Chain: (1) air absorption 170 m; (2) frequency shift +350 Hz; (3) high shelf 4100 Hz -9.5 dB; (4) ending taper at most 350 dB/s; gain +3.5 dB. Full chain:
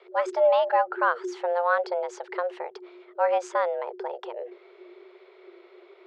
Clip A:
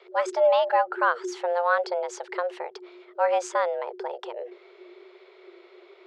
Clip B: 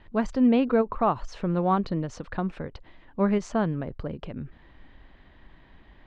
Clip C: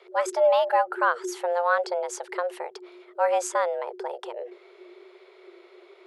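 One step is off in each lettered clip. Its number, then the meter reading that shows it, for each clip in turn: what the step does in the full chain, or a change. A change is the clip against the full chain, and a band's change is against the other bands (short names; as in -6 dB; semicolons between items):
3, 4 kHz band +3.5 dB; 2, 2 kHz band -4.5 dB; 1, 4 kHz band +3.0 dB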